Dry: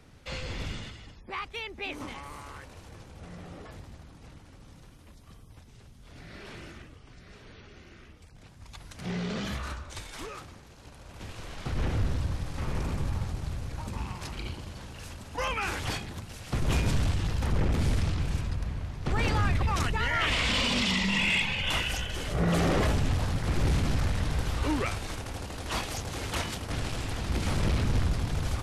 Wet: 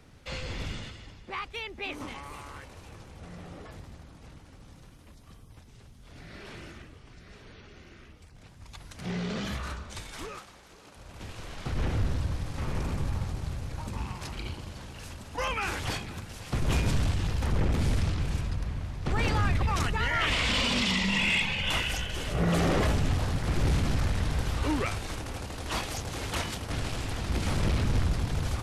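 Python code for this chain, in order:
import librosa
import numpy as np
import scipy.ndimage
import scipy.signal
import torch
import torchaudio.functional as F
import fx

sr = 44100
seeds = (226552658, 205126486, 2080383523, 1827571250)

y = fx.highpass(x, sr, hz=fx.line((10.38, 600.0), (10.95, 200.0)), slope=12, at=(10.38, 10.95), fade=0.02)
y = fx.echo_feedback(y, sr, ms=506, feedback_pct=43, wet_db=-19.0)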